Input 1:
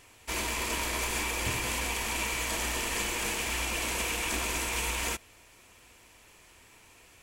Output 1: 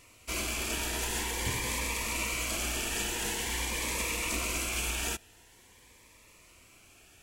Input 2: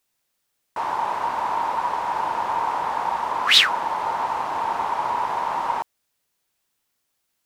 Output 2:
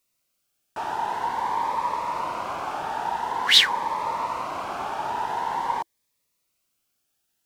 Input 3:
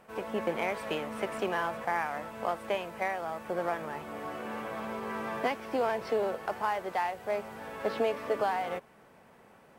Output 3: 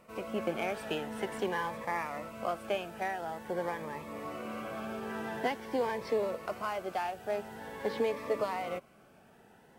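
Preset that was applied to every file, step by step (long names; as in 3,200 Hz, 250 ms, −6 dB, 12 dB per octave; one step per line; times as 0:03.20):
phaser whose notches keep moving one way rising 0.47 Hz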